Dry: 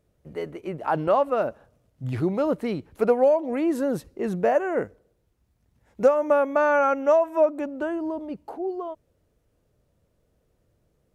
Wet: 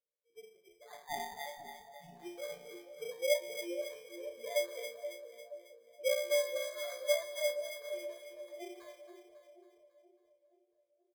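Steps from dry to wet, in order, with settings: formants replaced by sine waves; Bessel low-pass 2.8 kHz; band-stop 1.5 kHz, Q 9.5; comb 1.8 ms, depth 86%; 0.94–1.46 s: ring modulator 1.3 kHz; chord resonator A#2 major, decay 0.58 s; sample-and-hold 16×; two-band feedback delay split 690 Hz, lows 477 ms, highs 274 ms, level -8 dB; trim -3.5 dB

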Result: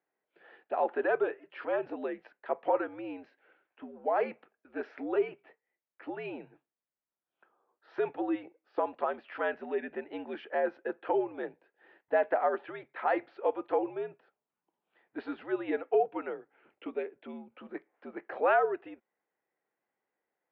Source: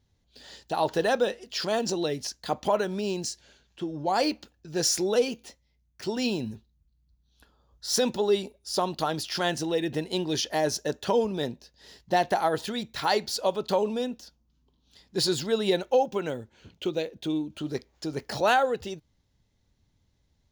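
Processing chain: mistuned SSB -81 Hz 460–2300 Hz; trim -2.5 dB

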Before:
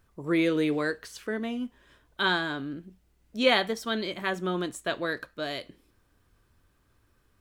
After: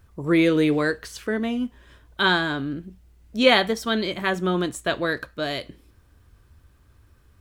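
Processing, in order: peaking EQ 70 Hz +10.5 dB 1.5 oct; trim +5.5 dB

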